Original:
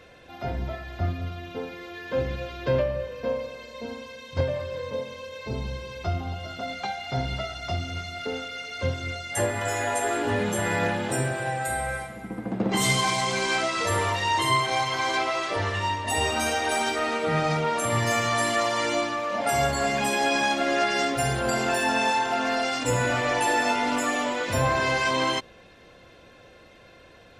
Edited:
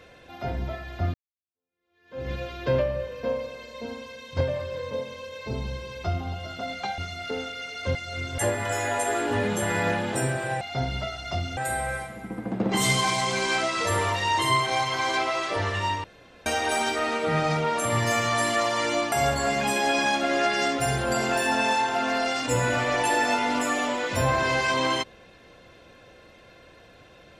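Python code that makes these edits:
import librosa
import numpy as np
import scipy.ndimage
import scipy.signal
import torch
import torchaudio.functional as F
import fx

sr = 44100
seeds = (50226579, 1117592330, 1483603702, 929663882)

y = fx.edit(x, sr, fx.fade_in_span(start_s=1.14, length_s=1.16, curve='exp'),
    fx.move(start_s=6.98, length_s=0.96, to_s=11.57),
    fx.reverse_span(start_s=8.91, length_s=0.43),
    fx.room_tone_fill(start_s=16.04, length_s=0.42),
    fx.cut(start_s=19.12, length_s=0.37), tone=tone)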